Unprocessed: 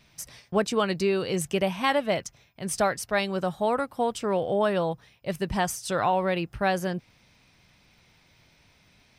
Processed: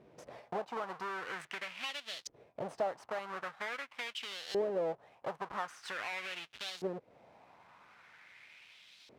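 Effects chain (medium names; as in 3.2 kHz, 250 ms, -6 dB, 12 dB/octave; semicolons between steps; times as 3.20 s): square wave that keeps the level; compression 12:1, threshold -34 dBFS, peak gain reduction 19 dB; LFO band-pass saw up 0.44 Hz 410–4200 Hz; trim +7 dB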